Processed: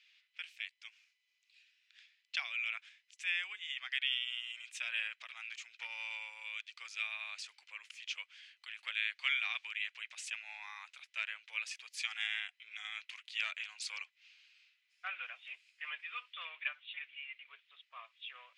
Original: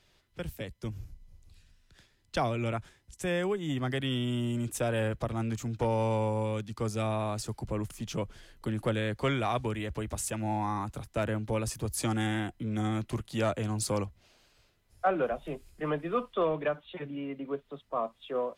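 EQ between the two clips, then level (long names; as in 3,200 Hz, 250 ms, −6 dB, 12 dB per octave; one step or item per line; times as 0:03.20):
four-pole ladder high-pass 2,100 Hz, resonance 55%
high-frequency loss of the air 130 metres
+10.5 dB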